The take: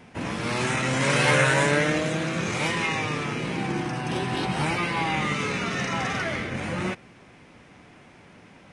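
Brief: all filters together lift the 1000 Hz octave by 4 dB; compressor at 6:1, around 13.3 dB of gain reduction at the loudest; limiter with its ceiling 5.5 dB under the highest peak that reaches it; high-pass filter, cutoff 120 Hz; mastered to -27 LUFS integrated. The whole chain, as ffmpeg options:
-af "highpass=120,equalizer=f=1k:t=o:g=5,acompressor=threshold=-30dB:ratio=6,volume=7.5dB,alimiter=limit=-18dB:level=0:latency=1"

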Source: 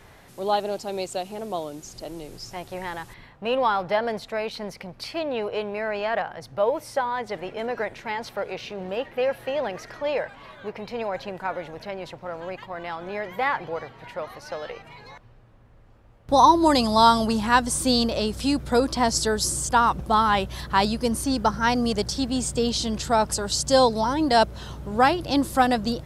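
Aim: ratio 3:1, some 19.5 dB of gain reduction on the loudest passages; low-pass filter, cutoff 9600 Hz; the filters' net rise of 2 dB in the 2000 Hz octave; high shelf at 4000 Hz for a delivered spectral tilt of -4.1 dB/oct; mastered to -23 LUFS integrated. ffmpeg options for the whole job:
-af "lowpass=9.6k,equalizer=f=2k:t=o:g=3.5,highshelf=f=4k:g=-4.5,acompressor=threshold=-38dB:ratio=3,volume=15dB"

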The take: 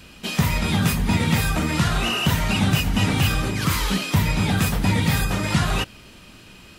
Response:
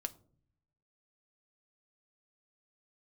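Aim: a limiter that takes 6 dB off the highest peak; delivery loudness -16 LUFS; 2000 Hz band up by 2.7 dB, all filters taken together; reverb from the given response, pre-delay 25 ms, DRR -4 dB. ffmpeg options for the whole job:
-filter_complex "[0:a]equalizer=f=2k:t=o:g=3.5,alimiter=limit=-13.5dB:level=0:latency=1,asplit=2[a][b];[1:a]atrim=start_sample=2205,adelay=25[c];[b][c]afir=irnorm=-1:irlink=0,volume=5.5dB[d];[a][d]amix=inputs=2:normalize=0,volume=1dB"

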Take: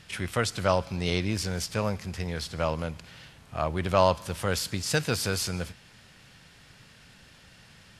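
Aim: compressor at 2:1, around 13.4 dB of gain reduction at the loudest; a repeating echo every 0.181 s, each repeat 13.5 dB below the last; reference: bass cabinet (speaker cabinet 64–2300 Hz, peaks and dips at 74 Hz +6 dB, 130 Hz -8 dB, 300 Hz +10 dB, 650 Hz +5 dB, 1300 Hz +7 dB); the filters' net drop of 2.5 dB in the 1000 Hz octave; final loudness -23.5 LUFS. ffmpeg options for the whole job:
-af "equalizer=f=1k:t=o:g=-8,acompressor=threshold=-44dB:ratio=2,highpass=f=64:w=0.5412,highpass=f=64:w=1.3066,equalizer=f=74:t=q:w=4:g=6,equalizer=f=130:t=q:w=4:g=-8,equalizer=f=300:t=q:w=4:g=10,equalizer=f=650:t=q:w=4:g=5,equalizer=f=1.3k:t=q:w=4:g=7,lowpass=f=2.3k:w=0.5412,lowpass=f=2.3k:w=1.3066,aecho=1:1:181|362:0.211|0.0444,volume=16.5dB"

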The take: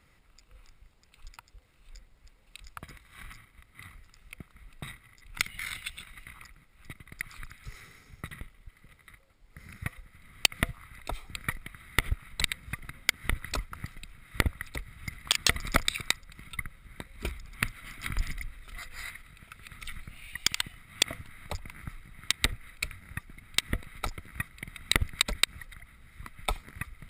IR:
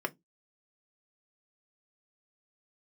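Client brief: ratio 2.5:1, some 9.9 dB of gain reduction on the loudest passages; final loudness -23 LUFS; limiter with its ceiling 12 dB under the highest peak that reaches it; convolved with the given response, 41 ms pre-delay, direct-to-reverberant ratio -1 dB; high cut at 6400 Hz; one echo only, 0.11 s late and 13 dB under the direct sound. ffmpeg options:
-filter_complex "[0:a]lowpass=6.4k,acompressor=threshold=-37dB:ratio=2.5,alimiter=level_in=1.5dB:limit=-24dB:level=0:latency=1,volume=-1.5dB,aecho=1:1:110:0.224,asplit=2[a][b];[1:a]atrim=start_sample=2205,adelay=41[c];[b][c]afir=irnorm=-1:irlink=0,volume=-4.5dB[d];[a][d]amix=inputs=2:normalize=0,volume=20.5dB"

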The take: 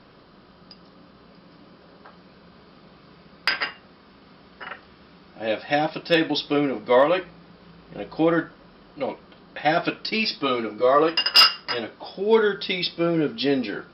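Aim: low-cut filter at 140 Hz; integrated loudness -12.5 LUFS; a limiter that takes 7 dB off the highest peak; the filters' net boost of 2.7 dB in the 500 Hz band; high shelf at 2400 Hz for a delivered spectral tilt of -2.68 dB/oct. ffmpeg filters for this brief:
-af "highpass=140,equalizer=f=500:t=o:g=3.5,highshelf=f=2.4k:g=-8,volume=11.5dB,alimiter=limit=0dB:level=0:latency=1"

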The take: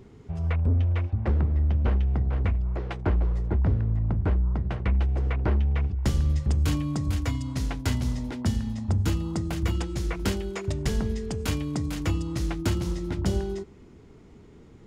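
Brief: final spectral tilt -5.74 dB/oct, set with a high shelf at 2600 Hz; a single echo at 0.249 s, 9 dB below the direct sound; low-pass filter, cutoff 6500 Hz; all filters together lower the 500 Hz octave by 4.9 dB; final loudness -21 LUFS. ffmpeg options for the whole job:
-af "lowpass=6.5k,equalizer=f=500:t=o:g=-7.5,highshelf=f=2.6k:g=7.5,aecho=1:1:249:0.355,volume=6.5dB"

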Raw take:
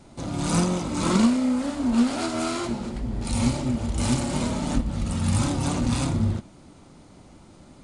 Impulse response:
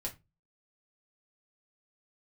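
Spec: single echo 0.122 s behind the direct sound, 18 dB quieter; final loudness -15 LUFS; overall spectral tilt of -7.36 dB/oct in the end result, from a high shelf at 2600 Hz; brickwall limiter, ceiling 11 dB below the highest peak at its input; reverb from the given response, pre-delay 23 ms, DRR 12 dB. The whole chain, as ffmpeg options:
-filter_complex "[0:a]highshelf=f=2.6k:g=-8.5,alimiter=limit=-20dB:level=0:latency=1,aecho=1:1:122:0.126,asplit=2[a][b];[1:a]atrim=start_sample=2205,adelay=23[c];[b][c]afir=irnorm=-1:irlink=0,volume=-12dB[d];[a][d]amix=inputs=2:normalize=0,volume=13.5dB"

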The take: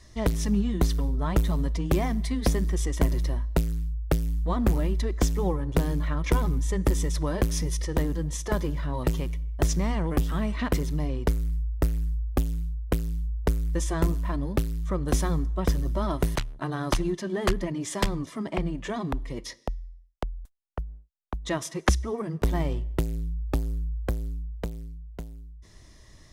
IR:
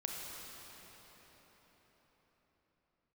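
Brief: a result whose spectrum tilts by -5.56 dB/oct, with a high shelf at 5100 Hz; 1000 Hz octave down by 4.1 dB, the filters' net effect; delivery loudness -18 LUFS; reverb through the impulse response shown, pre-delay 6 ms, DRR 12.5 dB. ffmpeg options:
-filter_complex "[0:a]equalizer=f=1k:t=o:g=-5.5,highshelf=f=5.1k:g=3.5,asplit=2[a][b];[1:a]atrim=start_sample=2205,adelay=6[c];[b][c]afir=irnorm=-1:irlink=0,volume=-14dB[d];[a][d]amix=inputs=2:normalize=0,volume=10.5dB"

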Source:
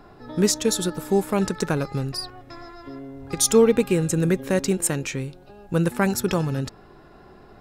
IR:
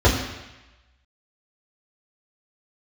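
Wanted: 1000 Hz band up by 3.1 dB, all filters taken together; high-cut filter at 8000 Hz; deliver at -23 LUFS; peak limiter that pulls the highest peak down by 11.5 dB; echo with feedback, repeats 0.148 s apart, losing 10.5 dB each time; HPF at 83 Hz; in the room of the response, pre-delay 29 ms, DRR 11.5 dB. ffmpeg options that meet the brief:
-filter_complex "[0:a]highpass=83,lowpass=8k,equalizer=f=1k:t=o:g=4,alimiter=limit=-17.5dB:level=0:latency=1,aecho=1:1:148|296|444:0.299|0.0896|0.0269,asplit=2[a][b];[1:a]atrim=start_sample=2205,adelay=29[c];[b][c]afir=irnorm=-1:irlink=0,volume=-32.5dB[d];[a][d]amix=inputs=2:normalize=0,volume=4dB"

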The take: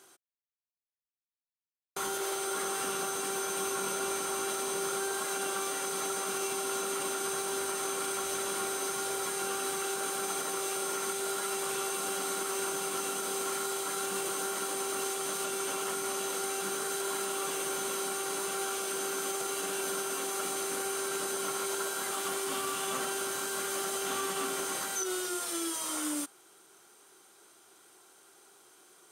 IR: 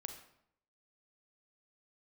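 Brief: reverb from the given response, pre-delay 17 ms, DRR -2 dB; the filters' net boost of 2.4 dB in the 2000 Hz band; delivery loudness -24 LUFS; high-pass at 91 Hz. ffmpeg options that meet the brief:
-filter_complex "[0:a]highpass=91,equalizer=f=2k:t=o:g=3.5,asplit=2[a][b];[1:a]atrim=start_sample=2205,adelay=17[c];[b][c]afir=irnorm=-1:irlink=0,volume=5dB[d];[a][d]amix=inputs=2:normalize=0,volume=4dB"

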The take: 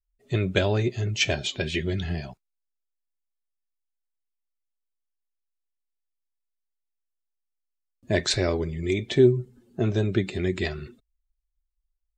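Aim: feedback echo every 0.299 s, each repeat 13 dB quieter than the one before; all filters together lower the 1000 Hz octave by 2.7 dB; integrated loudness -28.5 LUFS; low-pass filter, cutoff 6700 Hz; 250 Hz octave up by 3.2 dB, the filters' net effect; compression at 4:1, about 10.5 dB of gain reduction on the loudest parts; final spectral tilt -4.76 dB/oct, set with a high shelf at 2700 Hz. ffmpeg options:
-af "lowpass=6.7k,equalizer=f=250:t=o:g=5,equalizer=f=1k:t=o:g=-6,highshelf=f=2.7k:g=8.5,acompressor=threshold=-23dB:ratio=4,aecho=1:1:299|598|897:0.224|0.0493|0.0108,volume=-0.5dB"

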